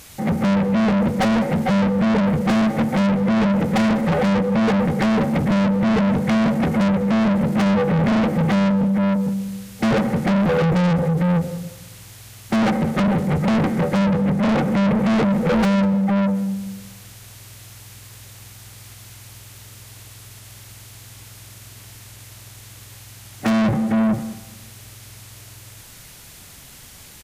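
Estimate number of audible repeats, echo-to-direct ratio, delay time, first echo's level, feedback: 2, -18.0 dB, 0.199 s, -18.5 dB, 30%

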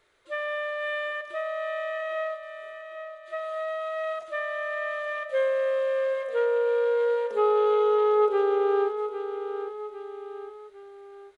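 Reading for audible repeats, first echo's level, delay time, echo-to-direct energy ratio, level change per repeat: 3, -10.0 dB, 0.805 s, -9.0 dB, -6.0 dB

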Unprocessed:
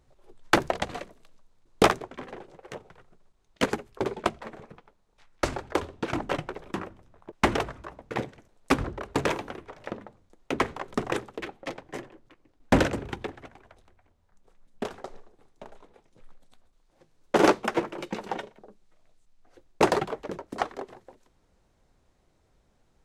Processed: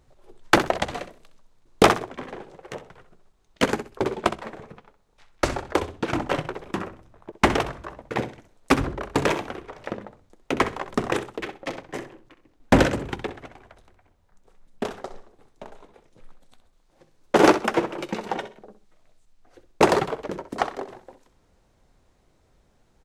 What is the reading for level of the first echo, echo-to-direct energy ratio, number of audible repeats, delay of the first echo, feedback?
-12.0 dB, -12.0 dB, 2, 64 ms, 21%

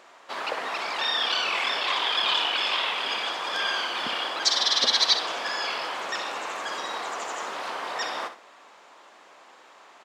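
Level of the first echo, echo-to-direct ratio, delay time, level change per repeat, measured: -11.0 dB, -10.5 dB, 63 ms, -11.5 dB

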